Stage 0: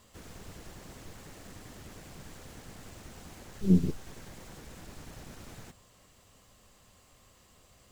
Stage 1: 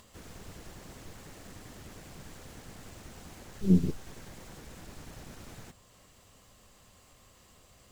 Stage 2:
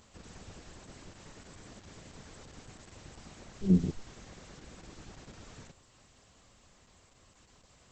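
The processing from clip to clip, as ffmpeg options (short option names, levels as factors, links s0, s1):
-af "acompressor=mode=upward:threshold=0.002:ratio=2.5"
-af "volume=0.841" -ar 48000 -c:a libopus -b:a 10k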